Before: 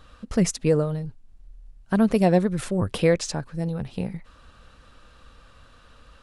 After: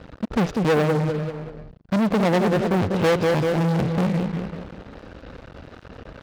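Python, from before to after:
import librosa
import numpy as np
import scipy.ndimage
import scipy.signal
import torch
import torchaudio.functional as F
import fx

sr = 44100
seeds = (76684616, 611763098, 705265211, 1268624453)

p1 = scipy.signal.medfilt(x, 41)
p2 = scipy.signal.sosfilt(scipy.signal.butter(4, 5100.0, 'lowpass', fs=sr, output='sos'), p1)
p3 = p2 + fx.echo_feedback(p2, sr, ms=194, feedback_pct=42, wet_db=-10, dry=0)
p4 = fx.rider(p3, sr, range_db=5, speed_s=0.5)
p5 = fx.leveller(p4, sr, passes=5)
p6 = fx.highpass(p5, sr, hz=200.0, slope=6)
y = p6 * librosa.db_to_amplitude(-3.0)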